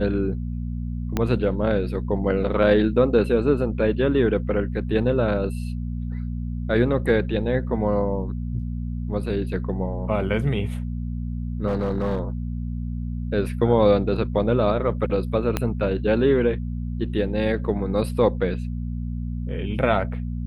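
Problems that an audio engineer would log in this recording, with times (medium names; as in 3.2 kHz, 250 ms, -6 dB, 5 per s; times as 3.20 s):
hum 60 Hz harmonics 4 -28 dBFS
1.17 s: pop -9 dBFS
11.67–12.21 s: clipped -18.5 dBFS
15.57 s: pop -8 dBFS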